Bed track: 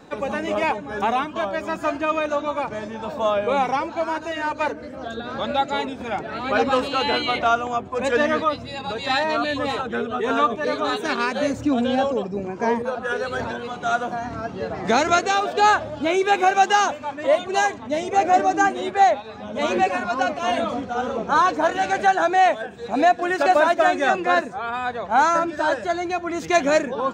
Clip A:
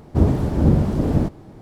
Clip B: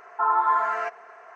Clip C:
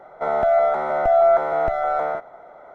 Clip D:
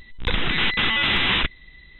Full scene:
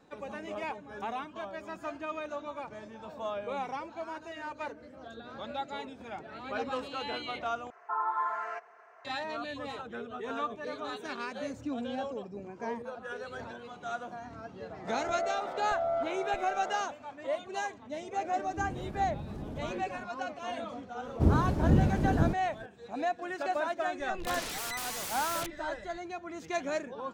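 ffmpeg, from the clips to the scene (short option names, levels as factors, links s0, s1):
-filter_complex "[1:a]asplit=2[s0][s1];[0:a]volume=0.178[s2];[s0]acompressor=threshold=0.0447:ratio=6:attack=3.2:release=140:knee=1:detection=peak[s3];[4:a]aeval=exprs='0.0398*(abs(mod(val(0)/0.0398+3,4)-2)-1)':c=same[s4];[s2]asplit=2[s5][s6];[s5]atrim=end=7.704[s7];[2:a]atrim=end=1.35,asetpts=PTS-STARTPTS,volume=0.316[s8];[s6]atrim=start=9.046[s9];[3:a]atrim=end=2.74,asetpts=PTS-STARTPTS,volume=0.158,afade=t=in:d=0.004:c=hsin,afade=t=out:st=2.736:d=0.004:c=hsin,adelay=14660[s10];[s3]atrim=end=1.61,asetpts=PTS-STARTPTS,volume=0.316,afade=t=in:d=0.004:c=hsin,afade=t=out:st=1.606:d=0.004:c=hsin,adelay=18430[s11];[s1]atrim=end=1.61,asetpts=PTS-STARTPTS,volume=0.398,afade=t=in:d=0.004:c=hsin,afade=t=out:st=1.606:d=0.004:c=hsin,adelay=21050[s12];[s4]atrim=end=1.99,asetpts=PTS-STARTPTS,volume=0.531,afade=t=in:d=0.004:c=hsin,afade=t=out:st=1.986:d=0.004:c=hsin,adelay=24000[s13];[s7][s8]acrossfade=d=0.004:c1=hsin:c2=hsin[s14];[s14][s9]acrossfade=d=0.004:c1=hsin:c2=hsin[s15];[s15][s10][s11][s12][s13]amix=inputs=5:normalize=0"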